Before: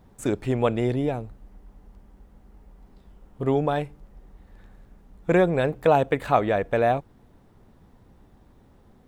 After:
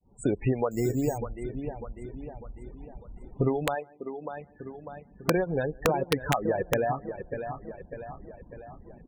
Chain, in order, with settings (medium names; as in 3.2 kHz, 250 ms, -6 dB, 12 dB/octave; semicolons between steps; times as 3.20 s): fade-in on the opening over 0.51 s; delay 143 ms -21.5 dB; compression 12:1, threshold -29 dBFS, peak gain reduction 16 dB; 6.03–6.59 s: low-pass 2 kHz 12 dB/octave; loudest bins only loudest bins 32; feedback delay 598 ms, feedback 49%, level -8 dB; 0.71–1.18 s: careless resampling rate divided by 6×, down filtered, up hold; dynamic bell 650 Hz, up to -4 dB, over -50 dBFS, Q 5.3; integer overflow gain 21 dB; 3.74–5.35 s: high-pass 360 Hz -> 91 Hz 12 dB/octave; reverb removal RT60 1.3 s; trim +8 dB